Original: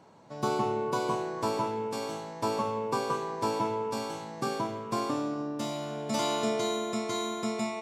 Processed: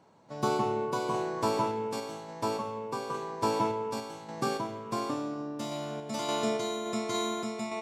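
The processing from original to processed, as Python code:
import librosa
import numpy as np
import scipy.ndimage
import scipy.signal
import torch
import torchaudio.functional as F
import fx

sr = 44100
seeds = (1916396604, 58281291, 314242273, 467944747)

y = fx.tremolo_random(x, sr, seeds[0], hz=3.5, depth_pct=55)
y = y * 10.0 ** (1.5 / 20.0)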